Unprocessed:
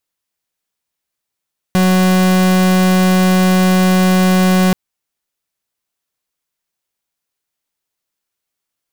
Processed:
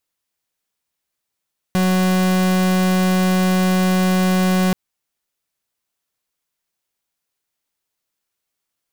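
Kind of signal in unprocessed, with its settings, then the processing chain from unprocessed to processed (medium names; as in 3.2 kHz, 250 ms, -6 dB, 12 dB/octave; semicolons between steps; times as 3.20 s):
pulse 185 Hz, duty 42% -11 dBFS 2.98 s
peak limiter -16 dBFS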